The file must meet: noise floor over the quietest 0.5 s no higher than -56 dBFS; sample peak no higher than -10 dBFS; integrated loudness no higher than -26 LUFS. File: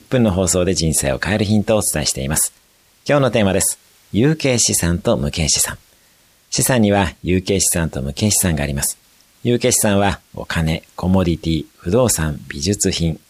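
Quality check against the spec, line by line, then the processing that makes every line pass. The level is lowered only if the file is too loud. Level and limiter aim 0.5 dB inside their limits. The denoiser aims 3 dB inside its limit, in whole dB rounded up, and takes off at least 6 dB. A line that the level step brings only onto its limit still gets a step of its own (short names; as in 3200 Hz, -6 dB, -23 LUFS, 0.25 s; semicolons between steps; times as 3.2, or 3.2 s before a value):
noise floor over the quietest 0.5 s -54 dBFS: fail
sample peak -4.5 dBFS: fail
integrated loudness -17.0 LUFS: fail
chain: gain -9.5 dB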